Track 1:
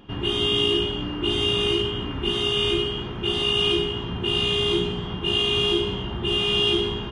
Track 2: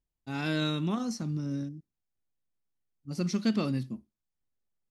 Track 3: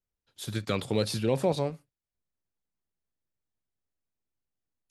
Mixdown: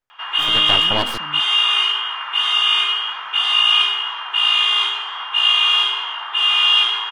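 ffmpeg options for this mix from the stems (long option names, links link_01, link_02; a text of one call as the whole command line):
ffmpeg -i stem1.wav -i stem2.wav -i stem3.wav -filter_complex "[0:a]highpass=frequency=970:width=0.5412,highpass=frequency=970:width=1.3066,adelay=100,volume=1.5dB[link_01];[1:a]volume=-10.5dB[link_02];[2:a]aeval=exprs='abs(val(0))':channel_layout=same,volume=1dB,asplit=3[link_03][link_04][link_05];[link_03]atrim=end=1.18,asetpts=PTS-STARTPTS,afade=type=out:start_time=1.176:duration=0.004:curve=hsin[link_06];[link_04]atrim=start=1.18:end=3.19,asetpts=PTS-STARTPTS,volume=0[link_07];[link_05]atrim=start=3.19,asetpts=PTS-STARTPTS,afade=type=in:duration=0.004:curve=hsin[link_08];[link_06][link_07][link_08]concat=n=3:v=0:a=1,asplit=2[link_09][link_10];[link_10]apad=whole_len=216346[link_11];[link_02][link_11]sidechaingate=range=-33dB:threshold=-59dB:ratio=16:detection=peak[link_12];[link_01][link_12][link_09]amix=inputs=3:normalize=0,equalizer=frequency=1200:width=0.42:gain=12.5" out.wav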